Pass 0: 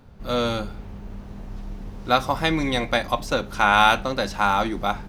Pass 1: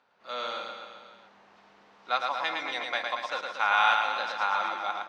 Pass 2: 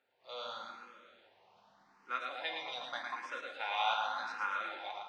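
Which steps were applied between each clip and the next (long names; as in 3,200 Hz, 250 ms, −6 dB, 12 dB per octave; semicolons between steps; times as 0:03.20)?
high-pass filter 890 Hz 12 dB per octave; high-frequency loss of the air 140 metres; on a send: reverse bouncing-ball delay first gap 110 ms, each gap 1.1×, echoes 5; on the sum: level −5 dB
on a send at −5 dB: convolution reverb RT60 0.80 s, pre-delay 4 ms; on the sum: frequency shifter mixed with the dry sound +0.85 Hz; level −7 dB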